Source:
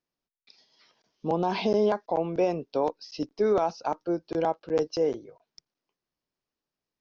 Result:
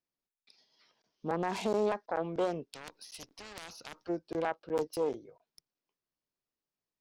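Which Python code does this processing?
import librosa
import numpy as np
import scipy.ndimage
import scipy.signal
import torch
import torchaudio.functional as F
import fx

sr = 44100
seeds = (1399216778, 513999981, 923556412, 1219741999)

y = fx.self_delay(x, sr, depth_ms=0.2)
y = fx.spectral_comp(y, sr, ratio=4.0, at=(2.72, 4.08), fade=0.02)
y = F.gain(torch.from_numpy(y), -6.0).numpy()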